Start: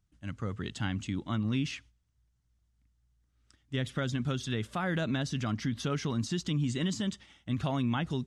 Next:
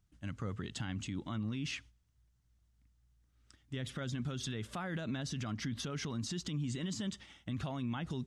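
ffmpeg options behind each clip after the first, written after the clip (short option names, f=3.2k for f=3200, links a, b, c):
-af "alimiter=level_in=7dB:limit=-24dB:level=0:latency=1:release=96,volume=-7dB,volume=1dB"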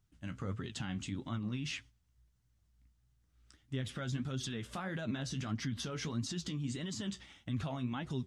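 -af "flanger=delay=7.4:depth=8.9:regen=45:speed=1.6:shape=sinusoidal,volume=4dB"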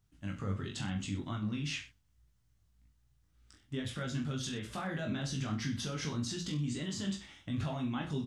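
-af "aecho=1:1:20|42|66.2|92.82|122.1:0.631|0.398|0.251|0.158|0.1"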